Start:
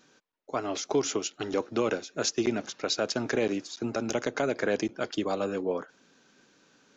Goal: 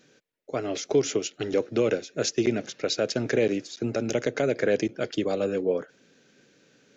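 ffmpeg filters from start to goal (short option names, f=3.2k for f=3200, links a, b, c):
-af "equalizer=f=125:t=o:w=1:g=7,equalizer=f=500:t=o:w=1:g=7,equalizer=f=1k:t=o:w=1:g=-10,equalizer=f=2k:t=o:w=1:g=5"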